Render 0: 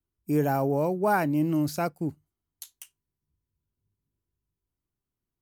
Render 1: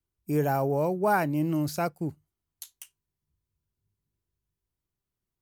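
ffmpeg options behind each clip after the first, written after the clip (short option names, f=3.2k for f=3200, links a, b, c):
-af "equalizer=f=270:w=3.3:g=-4.5"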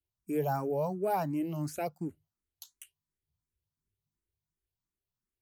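-filter_complex "[0:a]asplit=2[a][b];[b]afreqshift=2.8[c];[a][c]amix=inputs=2:normalize=1,volume=-3.5dB"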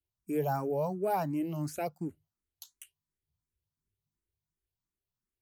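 -af anull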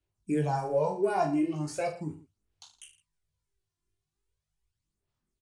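-af "aresample=22050,aresample=44100,aphaser=in_gain=1:out_gain=1:delay=2.9:decay=0.65:speed=0.39:type=sinusoidal,aecho=1:1:20|45|76.25|115.3|164.1:0.631|0.398|0.251|0.158|0.1"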